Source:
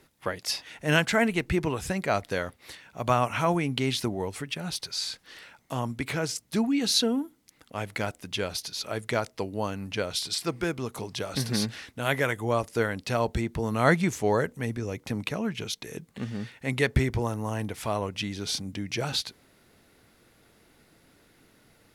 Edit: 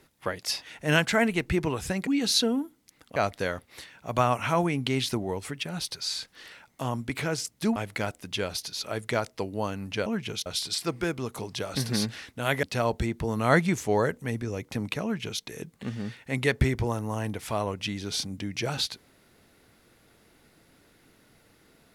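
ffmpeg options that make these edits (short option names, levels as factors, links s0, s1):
-filter_complex "[0:a]asplit=7[s0][s1][s2][s3][s4][s5][s6];[s0]atrim=end=2.072[s7];[s1]atrim=start=6.668:end=7.762[s8];[s2]atrim=start=2.068:end=6.672[s9];[s3]atrim=start=7.758:end=10.062[s10];[s4]atrim=start=15.378:end=15.782[s11];[s5]atrim=start=10.058:end=12.232[s12];[s6]atrim=start=12.978[s13];[s7][s8]acrossfade=d=0.004:c1=hsin:c2=hsin[s14];[s14][s9]acrossfade=d=0.004:c1=hsin:c2=hsin[s15];[s15][s10]acrossfade=d=0.004:c1=hsin:c2=hsin[s16];[s16][s11]acrossfade=d=0.004:c1=hsin:c2=hsin[s17];[s17][s12]acrossfade=d=0.004:c1=hsin:c2=hsin[s18];[s18][s13]acrossfade=d=0.004:c1=hsin:c2=hsin"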